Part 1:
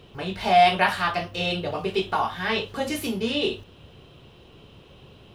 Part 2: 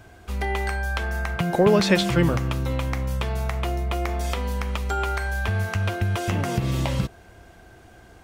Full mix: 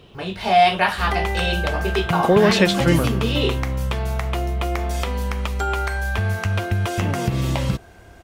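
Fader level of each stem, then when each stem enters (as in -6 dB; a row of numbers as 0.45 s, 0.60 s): +2.0 dB, +2.5 dB; 0.00 s, 0.70 s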